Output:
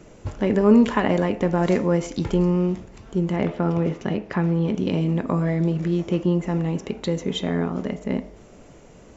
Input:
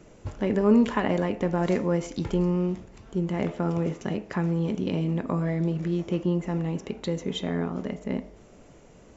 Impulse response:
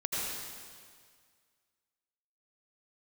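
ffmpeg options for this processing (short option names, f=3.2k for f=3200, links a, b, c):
-filter_complex "[0:a]asettb=1/sr,asplit=3[a][b][c];[a]atrim=end=3.364[d];[b]atrim=start=3.36:end=4.77,asetpts=PTS-STARTPTS,afade=t=in:d=0.004:c=qsin,afade=t=out:st=1.406:d=0.004:c=qsin,lowpass=4.7k[e];[c]atrim=start=4.766[f];[d][e]acrossfade=d=0.004:c1=hsin:c2=qsin[g];[g][f]acrossfade=d=0.004:c1=qsin:c2=hsin,volume=4.5dB"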